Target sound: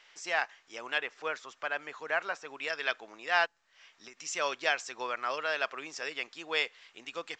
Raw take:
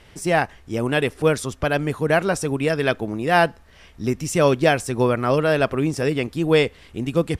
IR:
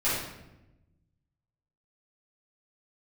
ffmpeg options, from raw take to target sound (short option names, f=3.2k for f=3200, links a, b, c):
-filter_complex "[0:a]asettb=1/sr,asplit=3[a][b][c];[a]atrim=end=0.984[d];[b]atrim=start=0.98:end=2.58,asetpts=PTS-STARTPTS,afade=t=in:d=0.004:c=qsin,afade=t=out:st=1.596:d=0.004:c=qsin,acrossover=split=2600[e][f];[f]acompressor=threshold=-45dB:ratio=4:attack=1:release=60[g];[e][g]amix=inputs=2:normalize=0[h];[c]atrim=start=2.576[i];[d][h]acrossfade=d=0.004:c1=hsin:c2=qsin[j];[j][i]acrossfade=d=0.004:c1=qsin:c2=hsin,highpass=1.1k,asplit=3[k][l][m];[k]afade=t=out:st=3.45:d=0.02[n];[l]acompressor=threshold=-42dB:ratio=10,afade=t=in:st=3.45:d=0.02,afade=t=out:st=4.16:d=0.02[o];[m]afade=t=in:st=4.16:d=0.02[p];[n][o][p]amix=inputs=3:normalize=0,volume=-5.5dB" -ar 16000 -c:a pcm_mulaw